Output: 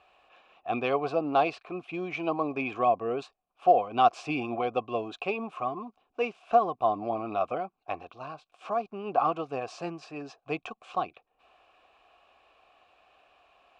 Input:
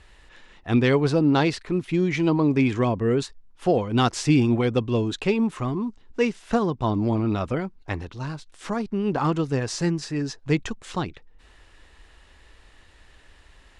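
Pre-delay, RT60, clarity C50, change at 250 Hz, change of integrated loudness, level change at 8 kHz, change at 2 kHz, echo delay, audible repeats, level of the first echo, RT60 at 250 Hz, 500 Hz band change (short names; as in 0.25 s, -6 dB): none, none, none, -14.0 dB, -5.5 dB, under -15 dB, -6.0 dB, none, none, none, none, -4.0 dB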